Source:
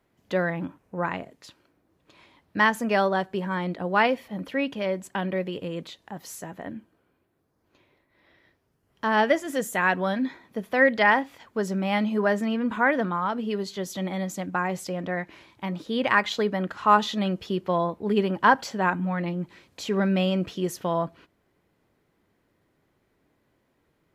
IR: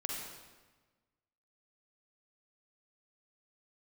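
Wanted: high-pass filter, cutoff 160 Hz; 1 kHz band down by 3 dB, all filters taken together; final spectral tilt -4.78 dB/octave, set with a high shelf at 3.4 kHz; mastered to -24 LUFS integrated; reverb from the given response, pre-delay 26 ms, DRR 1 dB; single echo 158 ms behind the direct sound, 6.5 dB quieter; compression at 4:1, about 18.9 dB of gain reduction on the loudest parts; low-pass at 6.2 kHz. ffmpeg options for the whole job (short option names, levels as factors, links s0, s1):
-filter_complex "[0:a]highpass=160,lowpass=6200,equalizer=f=1000:t=o:g=-4,highshelf=f=3400:g=4,acompressor=threshold=0.0126:ratio=4,aecho=1:1:158:0.473,asplit=2[s0][s1];[1:a]atrim=start_sample=2205,adelay=26[s2];[s1][s2]afir=irnorm=-1:irlink=0,volume=0.708[s3];[s0][s3]amix=inputs=2:normalize=0,volume=4.47"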